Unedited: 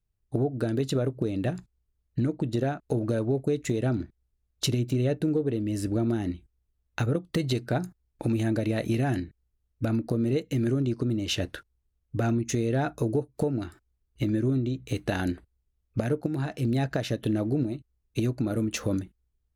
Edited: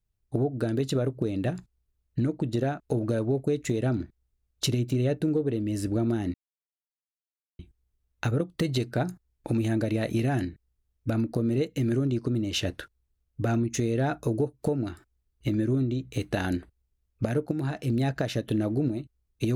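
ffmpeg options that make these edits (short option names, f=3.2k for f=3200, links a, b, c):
-filter_complex "[0:a]asplit=2[a][b];[a]atrim=end=6.34,asetpts=PTS-STARTPTS,afade=t=out:st=6.336:d=0.004:c=hsin,apad=pad_dur=1.25[c];[b]atrim=start=6.34,asetpts=PTS-STARTPTS,afade=t=in:d=0.004:c=hsin[d];[c][d]concat=n=2:v=0:a=1"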